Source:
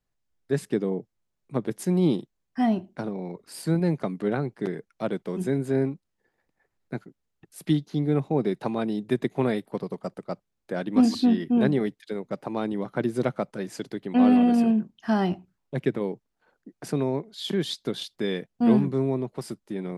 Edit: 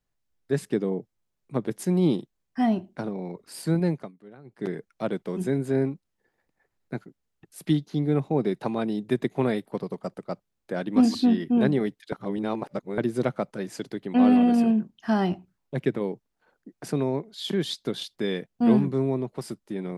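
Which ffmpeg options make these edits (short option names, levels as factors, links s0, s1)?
-filter_complex "[0:a]asplit=5[s0][s1][s2][s3][s4];[s0]atrim=end=4.12,asetpts=PTS-STARTPTS,afade=t=out:st=3.86:d=0.26:silence=0.0841395[s5];[s1]atrim=start=4.12:end=4.44,asetpts=PTS-STARTPTS,volume=0.0841[s6];[s2]atrim=start=4.44:end=12.122,asetpts=PTS-STARTPTS,afade=t=in:d=0.26:silence=0.0841395[s7];[s3]atrim=start=12.118:end=12.982,asetpts=PTS-STARTPTS,areverse[s8];[s4]atrim=start=12.978[s9];[s5][s6][s7]concat=n=3:v=0:a=1[s10];[s10][s8]acrossfade=d=0.004:c1=hsin:c2=hsin[s11];[s11][s9]acrossfade=d=0.004:c1=hsin:c2=hsin"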